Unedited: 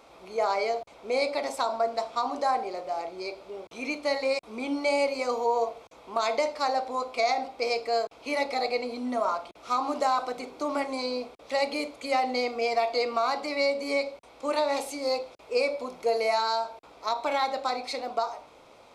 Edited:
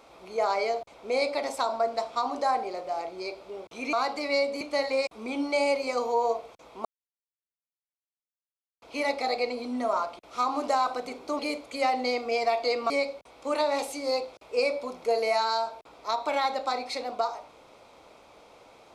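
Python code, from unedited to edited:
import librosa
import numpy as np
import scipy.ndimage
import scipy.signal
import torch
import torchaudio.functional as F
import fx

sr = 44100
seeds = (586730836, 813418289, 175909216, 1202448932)

y = fx.edit(x, sr, fx.silence(start_s=6.17, length_s=1.97),
    fx.cut(start_s=10.71, length_s=0.98),
    fx.move(start_s=13.2, length_s=0.68, to_s=3.93), tone=tone)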